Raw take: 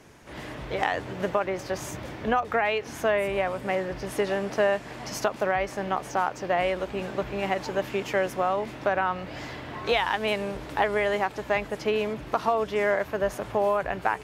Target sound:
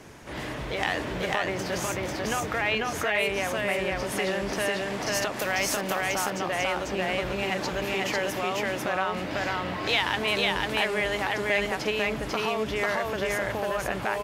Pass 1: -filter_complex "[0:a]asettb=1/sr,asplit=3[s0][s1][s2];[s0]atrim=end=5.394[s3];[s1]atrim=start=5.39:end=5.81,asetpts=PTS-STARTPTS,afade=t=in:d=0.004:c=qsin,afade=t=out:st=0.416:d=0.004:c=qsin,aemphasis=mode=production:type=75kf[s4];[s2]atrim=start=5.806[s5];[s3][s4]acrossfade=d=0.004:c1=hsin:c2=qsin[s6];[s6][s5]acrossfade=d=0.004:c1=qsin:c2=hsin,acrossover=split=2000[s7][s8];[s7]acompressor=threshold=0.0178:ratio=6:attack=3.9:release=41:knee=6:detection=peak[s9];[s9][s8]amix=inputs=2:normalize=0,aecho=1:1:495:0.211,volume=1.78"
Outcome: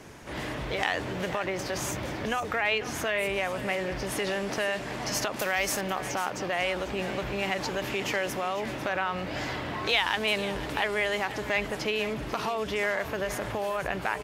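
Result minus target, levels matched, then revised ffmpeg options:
echo-to-direct -12 dB
-filter_complex "[0:a]asettb=1/sr,asplit=3[s0][s1][s2];[s0]atrim=end=5.394[s3];[s1]atrim=start=5.39:end=5.81,asetpts=PTS-STARTPTS,afade=t=in:d=0.004:c=qsin,afade=t=out:st=0.416:d=0.004:c=qsin,aemphasis=mode=production:type=75kf[s4];[s2]atrim=start=5.806[s5];[s3][s4]acrossfade=d=0.004:c1=hsin:c2=qsin[s6];[s6][s5]acrossfade=d=0.004:c1=qsin:c2=hsin,acrossover=split=2000[s7][s8];[s7]acompressor=threshold=0.0178:ratio=6:attack=3.9:release=41:knee=6:detection=peak[s9];[s9][s8]amix=inputs=2:normalize=0,aecho=1:1:495:0.841,volume=1.78"

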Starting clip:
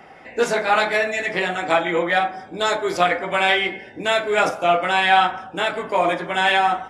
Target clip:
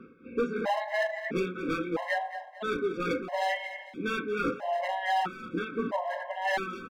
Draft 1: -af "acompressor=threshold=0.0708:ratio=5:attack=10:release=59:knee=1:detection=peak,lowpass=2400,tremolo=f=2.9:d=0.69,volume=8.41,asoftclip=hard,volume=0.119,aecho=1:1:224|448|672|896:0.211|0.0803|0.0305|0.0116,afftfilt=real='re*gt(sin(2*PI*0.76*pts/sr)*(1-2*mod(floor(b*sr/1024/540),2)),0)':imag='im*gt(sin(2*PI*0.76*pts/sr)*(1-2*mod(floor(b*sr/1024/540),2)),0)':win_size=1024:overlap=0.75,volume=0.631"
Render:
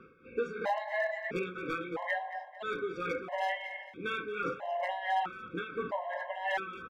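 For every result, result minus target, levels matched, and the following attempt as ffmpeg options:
250 Hz band -5.0 dB; compression: peak gain reduction +5 dB
-af "acompressor=threshold=0.0708:ratio=5:attack=10:release=59:knee=1:detection=peak,lowpass=2400,equalizer=f=250:t=o:w=0.83:g=13,tremolo=f=2.9:d=0.69,volume=8.41,asoftclip=hard,volume=0.119,aecho=1:1:224|448|672|896:0.211|0.0803|0.0305|0.0116,afftfilt=real='re*gt(sin(2*PI*0.76*pts/sr)*(1-2*mod(floor(b*sr/1024/540),2)),0)':imag='im*gt(sin(2*PI*0.76*pts/sr)*(1-2*mod(floor(b*sr/1024/540),2)),0)':win_size=1024:overlap=0.75,volume=0.631"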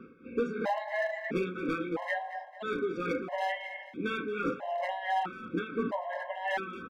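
compression: peak gain reduction +5 dB
-af "acompressor=threshold=0.141:ratio=5:attack=10:release=59:knee=1:detection=peak,lowpass=2400,equalizer=f=250:t=o:w=0.83:g=13,tremolo=f=2.9:d=0.69,volume=8.41,asoftclip=hard,volume=0.119,aecho=1:1:224|448|672|896:0.211|0.0803|0.0305|0.0116,afftfilt=real='re*gt(sin(2*PI*0.76*pts/sr)*(1-2*mod(floor(b*sr/1024/540),2)),0)':imag='im*gt(sin(2*PI*0.76*pts/sr)*(1-2*mod(floor(b*sr/1024/540),2)),0)':win_size=1024:overlap=0.75,volume=0.631"

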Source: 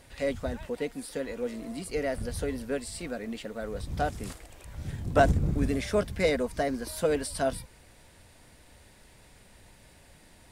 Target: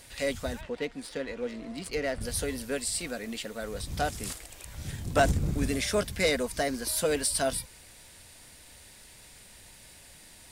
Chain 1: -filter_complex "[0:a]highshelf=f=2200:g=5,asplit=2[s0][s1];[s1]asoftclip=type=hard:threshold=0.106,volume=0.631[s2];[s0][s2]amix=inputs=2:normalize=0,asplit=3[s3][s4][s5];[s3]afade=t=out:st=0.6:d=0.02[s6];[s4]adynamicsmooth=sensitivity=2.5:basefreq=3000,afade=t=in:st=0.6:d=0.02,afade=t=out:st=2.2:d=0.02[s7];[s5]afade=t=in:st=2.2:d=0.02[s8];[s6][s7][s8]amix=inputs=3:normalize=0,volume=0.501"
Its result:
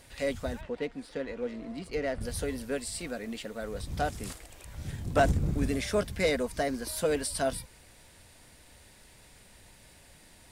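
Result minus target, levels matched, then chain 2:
4 kHz band -3.5 dB
-filter_complex "[0:a]highshelf=f=2200:g=12,asplit=2[s0][s1];[s1]asoftclip=type=hard:threshold=0.106,volume=0.631[s2];[s0][s2]amix=inputs=2:normalize=0,asplit=3[s3][s4][s5];[s3]afade=t=out:st=0.6:d=0.02[s6];[s4]adynamicsmooth=sensitivity=2.5:basefreq=3000,afade=t=in:st=0.6:d=0.02,afade=t=out:st=2.2:d=0.02[s7];[s5]afade=t=in:st=2.2:d=0.02[s8];[s6][s7][s8]amix=inputs=3:normalize=0,volume=0.501"

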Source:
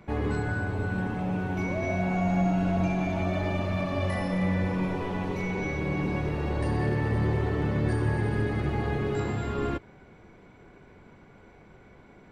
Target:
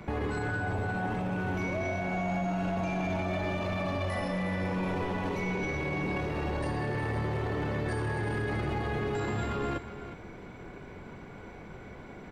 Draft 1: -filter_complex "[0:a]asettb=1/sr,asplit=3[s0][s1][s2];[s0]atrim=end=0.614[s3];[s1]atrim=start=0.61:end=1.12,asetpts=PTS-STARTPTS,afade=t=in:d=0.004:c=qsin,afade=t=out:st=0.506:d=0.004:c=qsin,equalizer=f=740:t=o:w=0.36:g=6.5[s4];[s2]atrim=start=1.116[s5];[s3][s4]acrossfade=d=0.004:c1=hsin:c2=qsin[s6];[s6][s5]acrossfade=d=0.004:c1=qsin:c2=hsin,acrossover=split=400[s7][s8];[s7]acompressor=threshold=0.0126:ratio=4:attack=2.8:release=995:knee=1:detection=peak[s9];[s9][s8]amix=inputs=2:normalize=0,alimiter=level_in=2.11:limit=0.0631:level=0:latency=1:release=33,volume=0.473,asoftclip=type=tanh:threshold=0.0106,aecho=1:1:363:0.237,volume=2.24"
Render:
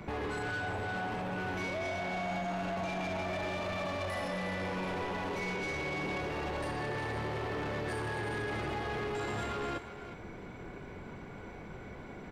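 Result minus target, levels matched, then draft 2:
saturation: distortion +13 dB; compression: peak gain reduction +6.5 dB
-filter_complex "[0:a]asettb=1/sr,asplit=3[s0][s1][s2];[s0]atrim=end=0.614[s3];[s1]atrim=start=0.61:end=1.12,asetpts=PTS-STARTPTS,afade=t=in:d=0.004:c=qsin,afade=t=out:st=0.506:d=0.004:c=qsin,equalizer=f=740:t=o:w=0.36:g=6.5[s4];[s2]atrim=start=1.116[s5];[s3][s4]acrossfade=d=0.004:c1=hsin:c2=qsin[s6];[s6][s5]acrossfade=d=0.004:c1=qsin:c2=hsin,acrossover=split=400[s7][s8];[s7]acompressor=threshold=0.0355:ratio=4:attack=2.8:release=995:knee=1:detection=peak[s9];[s9][s8]amix=inputs=2:normalize=0,alimiter=level_in=2.11:limit=0.0631:level=0:latency=1:release=33,volume=0.473,asoftclip=type=tanh:threshold=0.0335,aecho=1:1:363:0.237,volume=2.24"

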